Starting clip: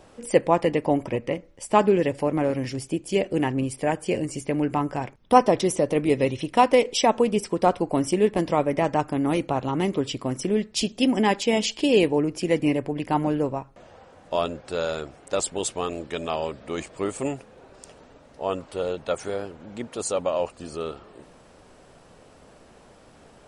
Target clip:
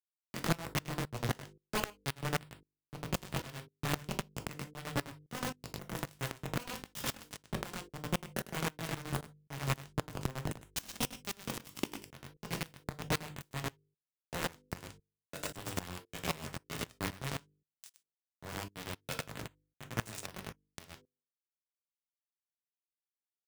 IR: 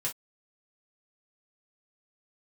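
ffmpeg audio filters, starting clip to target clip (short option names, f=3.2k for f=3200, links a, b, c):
-filter_complex "[0:a]acrossover=split=200|910[a][b][c];[b]asoftclip=type=tanh:threshold=-19dB[d];[a][d][c]amix=inputs=3:normalize=0,acompressor=threshold=-28dB:ratio=10,acrusher=bits=3:mix=0:aa=0.000001,aecho=1:1:101:0.596,asplit=2[e][f];[1:a]atrim=start_sample=2205[g];[f][g]afir=irnorm=-1:irlink=0,volume=-19dB[h];[e][h]amix=inputs=2:normalize=0,flanger=delay=17:depth=6:speed=1.6,equalizer=f=110:t=o:w=2:g=7,aeval=exprs='0.168*sin(PI/2*6.31*val(0)/0.168)':c=same,bandreject=f=50:t=h:w=6,bandreject=f=100:t=h:w=6,bandreject=f=150:t=h:w=6,bandreject=f=200:t=h:w=6,bandreject=f=250:t=h:w=6,bandreject=f=300:t=h:w=6,bandreject=f=350:t=h:w=6,bandreject=f=400:t=h:w=6,bandreject=f=450:t=h:w=6,bandreject=f=500:t=h:w=6,aeval=exprs='val(0)*pow(10,-20*if(lt(mod(-3.8*n/s,1),2*abs(-3.8)/1000),1-mod(-3.8*n/s,1)/(2*abs(-3.8)/1000),(mod(-3.8*n/s,1)-2*abs(-3.8)/1000)/(1-2*abs(-3.8)/1000))/20)':c=same,volume=-4.5dB"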